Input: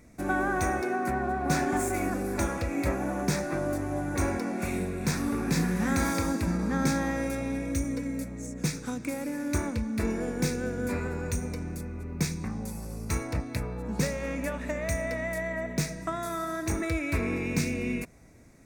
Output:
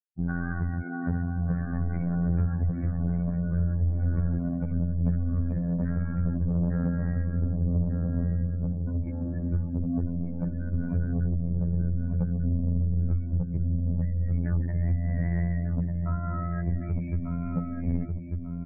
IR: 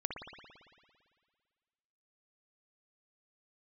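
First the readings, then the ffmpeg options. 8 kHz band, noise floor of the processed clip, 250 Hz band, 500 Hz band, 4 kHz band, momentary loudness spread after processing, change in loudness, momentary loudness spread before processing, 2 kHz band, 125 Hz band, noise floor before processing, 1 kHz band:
under -40 dB, -33 dBFS, 0.0 dB, -10.0 dB, under -40 dB, 4 LU, +1.5 dB, 7 LU, -11.0 dB, +8.0 dB, -40 dBFS, -12.0 dB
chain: -filter_complex "[0:a]afftfilt=real='re*gte(hypot(re,im),0.0562)':imag='im*gte(hypot(re,im),0.0562)':win_size=1024:overlap=0.75,aemphasis=mode=reproduction:type=bsi,acompressor=threshold=-23dB:ratio=12,lowshelf=f=280:t=q:w=3:g=11.5,dynaudnorm=f=220:g=3:m=10dB,asoftclip=type=tanh:threshold=-7.5dB,aeval=exprs='val(0)*sin(2*PI*24*n/s)':c=same,afftfilt=real='hypot(re,im)*cos(PI*b)':imag='0':win_size=2048:overlap=0.75,lowpass=f=1.6k:t=q:w=3.5,asplit=2[a][b];[b]adelay=1194,lowpass=f=940:p=1,volume=-3dB,asplit=2[c][d];[d]adelay=1194,lowpass=f=940:p=1,volume=0.42,asplit=2[e][f];[f]adelay=1194,lowpass=f=940:p=1,volume=0.42,asplit=2[g][h];[h]adelay=1194,lowpass=f=940:p=1,volume=0.42,asplit=2[i][j];[j]adelay=1194,lowpass=f=940:p=1,volume=0.42[k];[c][e][g][i][k]amix=inputs=5:normalize=0[l];[a][l]amix=inputs=2:normalize=0,volume=-7dB"

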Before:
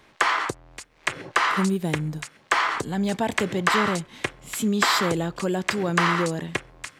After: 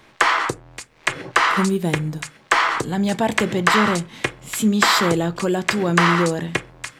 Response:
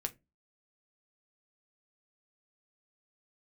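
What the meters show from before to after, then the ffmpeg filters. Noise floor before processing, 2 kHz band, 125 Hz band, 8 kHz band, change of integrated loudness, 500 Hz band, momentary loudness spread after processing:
-57 dBFS, +5.0 dB, +5.0 dB, +4.5 dB, +5.0 dB, +4.5 dB, 11 LU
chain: -filter_complex "[0:a]asplit=2[a][b];[1:a]atrim=start_sample=2205[c];[b][c]afir=irnorm=-1:irlink=0,volume=0dB[d];[a][d]amix=inputs=2:normalize=0,volume=-1dB"

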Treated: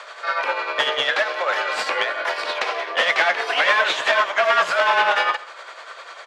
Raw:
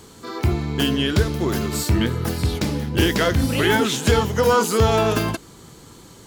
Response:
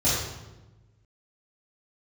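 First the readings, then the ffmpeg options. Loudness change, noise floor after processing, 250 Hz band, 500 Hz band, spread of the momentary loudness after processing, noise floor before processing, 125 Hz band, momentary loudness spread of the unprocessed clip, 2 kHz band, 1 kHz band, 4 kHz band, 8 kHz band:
+0.5 dB, -40 dBFS, -23.5 dB, -2.5 dB, 9 LU, -45 dBFS, under -35 dB, 6 LU, +8.0 dB, +5.0 dB, +2.5 dB, -9.5 dB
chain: -filter_complex "[0:a]highpass=650,aemphasis=mode=reproduction:type=75fm,asplit=2[a][b];[b]acompressor=threshold=-38dB:ratio=6,volume=2dB[c];[a][c]amix=inputs=2:normalize=0,asoftclip=type=hard:threshold=-21.5dB,crystalizer=i=7.5:c=0,asoftclip=type=tanh:threshold=-9dB,tremolo=f=10:d=0.49,afreqshift=180,acrusher=bits=6:mode=log:mix=0:aa=0.000001,aeval=exprs='0.376*(cos(1*acos(clip(val(0)/0.376,-1,1)))-cos(1*PI/2))+0.168*(cos(2*acos(clip(val(0)/0.376,-1,1)))-cos(2*PI/2))':c=same,asuperpass=centerf=1000:order=4:qfactor=0.52,asplit=2[d][e];[e]aecho=0:1:132:0.106[f];[d][f]amix=inputs=2:normalize=0,volume=6.5dB"

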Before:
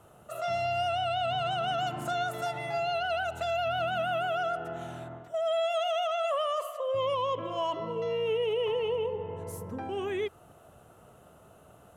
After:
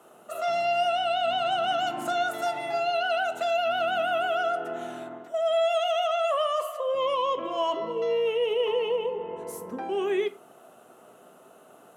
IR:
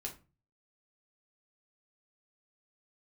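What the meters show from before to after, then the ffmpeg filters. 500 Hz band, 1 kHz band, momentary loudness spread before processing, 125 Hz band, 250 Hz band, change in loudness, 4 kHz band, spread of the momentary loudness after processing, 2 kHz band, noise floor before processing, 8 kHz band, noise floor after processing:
+4.0 dB, +4.0 dB, 8 LU, under -10 dB, +3.5 dB, +4.0 dB, +4.0 dB, 9 LU, +4.0 dB, -56 dBFS, n/a, -54 dBFS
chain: -filter_complex "[0:a]highpass=f=210:w=0.5412,highpass=f=210:w=1.3066,asplit=2[a][b];[1:a]atrim=start_sample=2205[c];[b][c]afir=irnorm=-1:irlink=0,volume=-1.5dB[d];[a][d]amix=inputs=2:normalize=0"

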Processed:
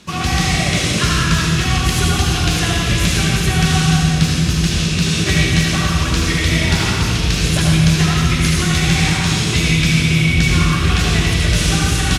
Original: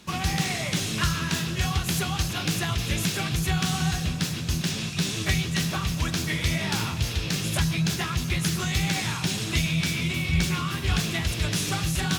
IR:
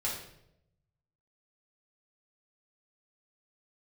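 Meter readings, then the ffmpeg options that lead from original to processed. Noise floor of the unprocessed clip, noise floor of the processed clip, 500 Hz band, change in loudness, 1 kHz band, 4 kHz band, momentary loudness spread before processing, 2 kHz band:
-31 dBFS, -19 dBFS, +11.0 dB, +11.0 dB, +10.0 dB, +10.5 dB, 3 LU, +11.0 dB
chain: -filter_complex "[0:a]lowpass=11k,equalizer=f=860:t=o:w=0.29:g=-3.5,aecho=1:1:169.1|212.8:0.316|0.251,asplit=2[a][b];[1:a]atrim=start_sample=2205,asetrate=24255,aresample=44100,adelay=73[c];[b][c]afir=irnorm=-1:irlink=0,volume=-7dB[d];[a][d]amix=inputs=2:normalize=0,volume=6dB"

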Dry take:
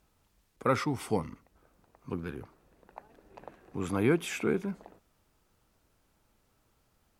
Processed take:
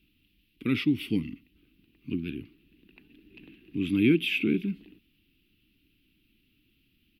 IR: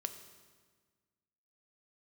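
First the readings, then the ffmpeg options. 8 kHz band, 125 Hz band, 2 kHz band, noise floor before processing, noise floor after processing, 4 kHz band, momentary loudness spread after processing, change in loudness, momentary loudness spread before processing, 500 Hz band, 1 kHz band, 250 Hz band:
under -10 dB, +2.0 dB, +5.0 dB, -72 dBFS, -70 dBFS, +9.0 dB, 16 LU, +3.5 dB, 18 LU, -3.5 dB, under -15 dB, +7.0 dB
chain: -af "firequalizer=gain_entry='entry(110,0);entry(300,10);entry(550,-25);entry(850,-26);entry(2700,15);entry(6800,-21);entry(12000,1)':delay=0.05:min_phase=1"

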